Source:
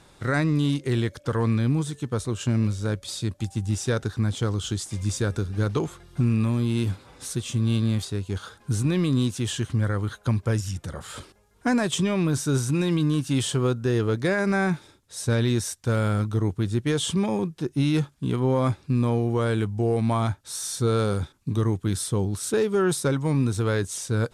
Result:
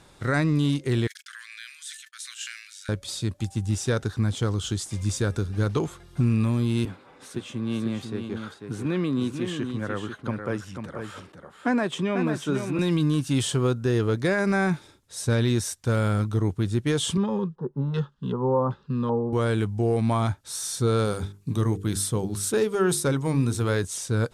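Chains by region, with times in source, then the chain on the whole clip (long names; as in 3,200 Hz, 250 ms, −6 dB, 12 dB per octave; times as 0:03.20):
0:01.07–0:02.89: Butterworth high-pass 1,600 Hz 48 dB per octave + noise gate −55 dBFS, range −57 dB + level that may fall only so fast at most 63 dB per second
0:06.85–0:12.79: three-way crossover with the lows and the highs turned down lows −18 dB, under 170 Hz, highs −13 dB, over 3,000 Hz + single-tap delay 493 ms −7 dB
0:17.17–0:19.33: phaser with its sweep stopped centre 460 Hz, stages 8 + auto-filter low-pass square 1.3 Hz 830–2,800 Hz
0:21.05–0:23.84: high-shelf EQ 10,000 Hz +7 dB + mains-hum notches 50/100/150/200/250/300/350/400/450 Hz
whole clip: no processing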